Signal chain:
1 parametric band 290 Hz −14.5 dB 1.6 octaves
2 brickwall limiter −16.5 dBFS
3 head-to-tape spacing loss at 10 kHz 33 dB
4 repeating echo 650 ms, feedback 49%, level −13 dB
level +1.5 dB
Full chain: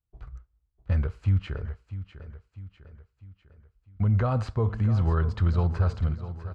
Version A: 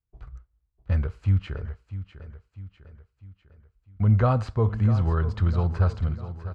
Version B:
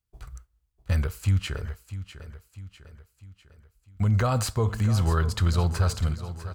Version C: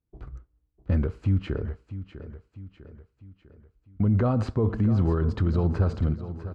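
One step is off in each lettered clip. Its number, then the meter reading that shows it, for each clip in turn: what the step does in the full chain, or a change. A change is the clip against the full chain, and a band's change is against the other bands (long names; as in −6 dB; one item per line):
2, change in crest factor +2.5 dB
3, 2 kHz band +4.5 dB
1, 250 Hz band +7.0 dB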